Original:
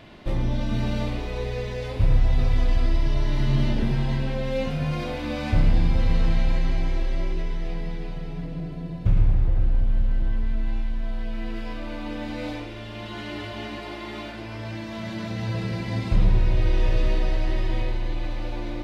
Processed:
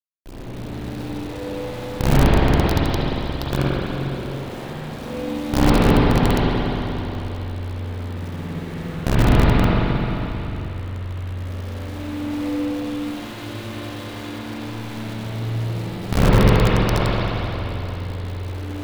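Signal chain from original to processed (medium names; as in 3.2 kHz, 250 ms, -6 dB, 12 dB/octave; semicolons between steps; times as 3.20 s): high-order bell 1.4 kHz -11 dB 2.6 oct; companded quantiser 2-bit; spring tank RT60 3.8 s, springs 44/58 ms, chirp 25 ms, DRR -9 dB; trim -10.5 dB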